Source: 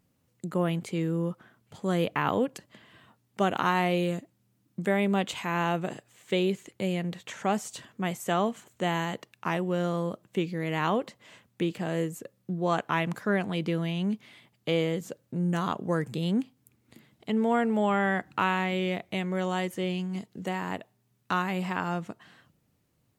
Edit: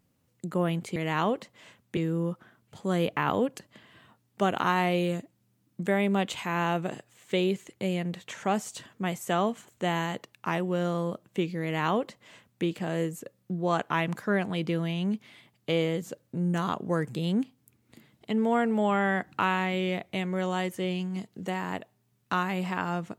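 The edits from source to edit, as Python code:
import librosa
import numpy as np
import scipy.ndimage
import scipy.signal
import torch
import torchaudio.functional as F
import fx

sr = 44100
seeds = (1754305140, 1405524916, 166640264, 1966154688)

y = fx.edit(x, sr, fx.duplicate(start_s=10.62, length_s=1.01, to_s=0.96), tone=tone)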